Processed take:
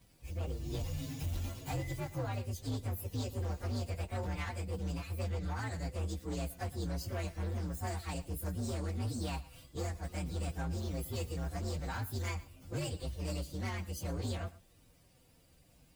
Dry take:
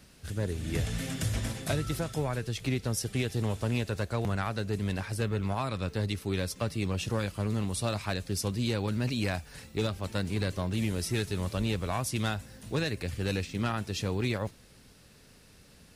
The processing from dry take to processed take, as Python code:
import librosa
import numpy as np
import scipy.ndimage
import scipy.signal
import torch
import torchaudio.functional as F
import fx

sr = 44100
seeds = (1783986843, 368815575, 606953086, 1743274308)

p1 = fx.partial_stretch(x, sr, pct=125)
p2 = np.clip(p1, -10.0 ** (-29.0 / 20.0), 10.0 ** (-29.0 / 20.0))
p3 = fx.notch_comb(p2, sr, f0_hz=210.0)
p4 = p3 + fx.echo_single(p3, sr, ms=114, db=-18.5, dry=0)
y = p4 * librosa.db_to_amplitude(-2.5)